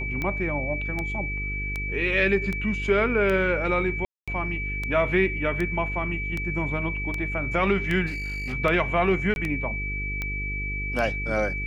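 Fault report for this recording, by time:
buzz 50 Hz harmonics 9 -32 dBFS
tick 78 rpm -16 dBFS
whine 2.3 kHz -30 dBFS
4.05–4.28 s: dropout 226 ms
8.06–8.54 s: clipped -27.5 dBFS
9.34–9.36 s: dropout 21 ms

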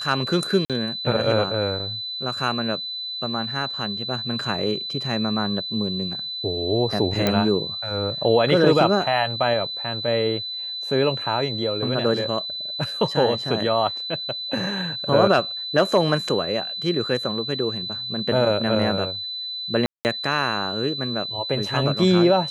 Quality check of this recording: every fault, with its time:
whine 4 kHz -28 dBFS
0.65–0.70 s: dropout 47 ms
7.27 s: pop -6 dBFS
19.86–20.05 s: dropout 189 ms

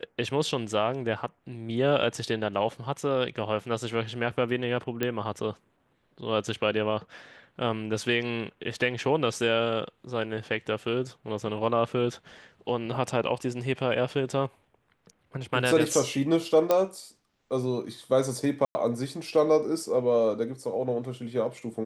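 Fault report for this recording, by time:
5.03 s: pop -13 dBFS
16.71 s: pop -10 dBFS
18.65–18.75 s: dropout 100 ms

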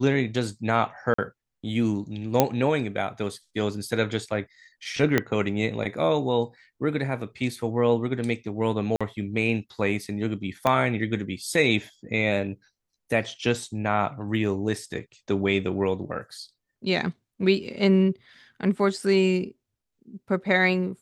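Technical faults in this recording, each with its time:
1.14–1.18 s: dropout 44 ms
2.40 s: pop -3 dBFS
5.18 s: pop -7 dBFS
8.96–9.01 s: dropout 46 ms
10.67 s: pop -10 dBFS

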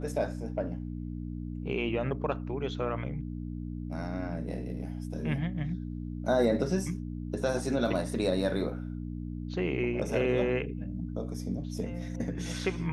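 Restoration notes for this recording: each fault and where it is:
hum 60 Hz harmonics 5 -37 dBFS

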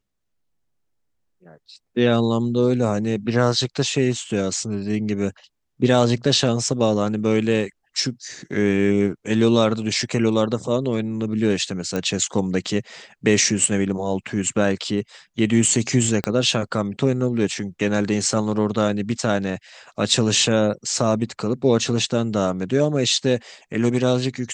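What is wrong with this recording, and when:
11.96 s: pop -12 dBFS
16.24 s: pop -9 dBFS

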